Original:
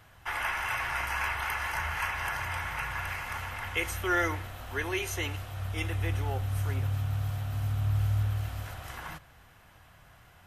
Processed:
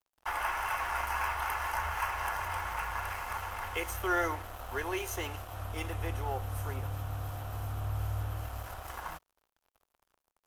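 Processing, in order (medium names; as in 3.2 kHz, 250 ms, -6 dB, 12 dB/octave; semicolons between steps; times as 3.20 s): in parallel at -1 dB: compression, threshold -37 dBFS, peak gain reduction 13.5 dB; on the sum: crossover distortion -43.5 dBFS; graphic EQ 125/250/1000/2000/4000/8000 Hz -12/-5/+3/-7/-6/-3 dB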